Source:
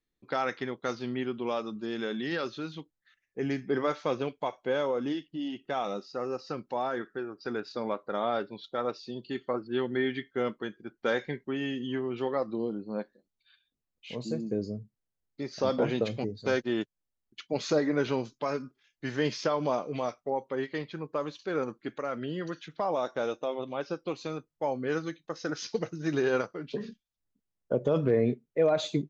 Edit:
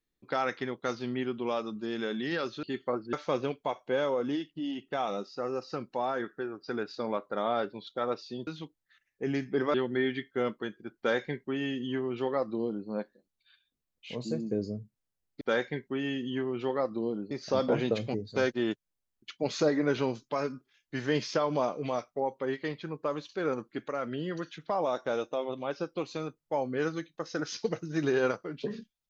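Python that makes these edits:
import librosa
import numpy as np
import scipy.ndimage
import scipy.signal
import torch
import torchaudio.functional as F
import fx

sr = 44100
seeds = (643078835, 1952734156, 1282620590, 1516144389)

y = fx.edit(x, sr, fx.swap(start_s=2.63, length_s=1.27, other_s=9.24, other_length_s=0.5),
    fx.duplicate(start_s=10.98, length_s=1.9, to_s=15.41), tone=tone)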